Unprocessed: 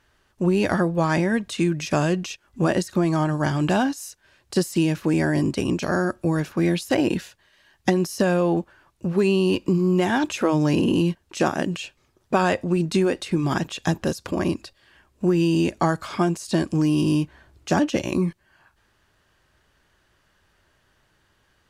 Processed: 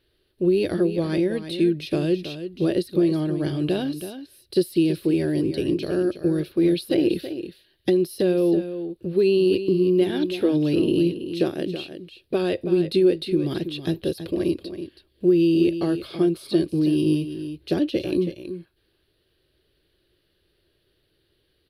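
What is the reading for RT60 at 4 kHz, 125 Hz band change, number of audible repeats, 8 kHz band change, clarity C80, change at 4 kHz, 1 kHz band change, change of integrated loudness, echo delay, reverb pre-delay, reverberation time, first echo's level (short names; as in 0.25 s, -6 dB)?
none, -4.5 dB, 1, n/a, none, -1.0 dB, -14.0 dB, 0.0 dB, 0.326 s, none, none, -10.5 dB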